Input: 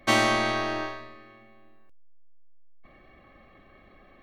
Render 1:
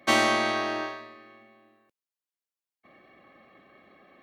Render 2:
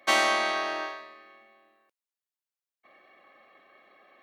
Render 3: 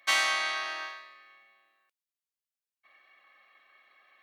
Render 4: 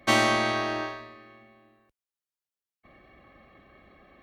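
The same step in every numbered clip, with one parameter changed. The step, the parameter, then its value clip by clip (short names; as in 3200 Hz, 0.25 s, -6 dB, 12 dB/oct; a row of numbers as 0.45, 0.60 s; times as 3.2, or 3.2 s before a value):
HPF, cutoff: 180, 510, 1400, 44 Hz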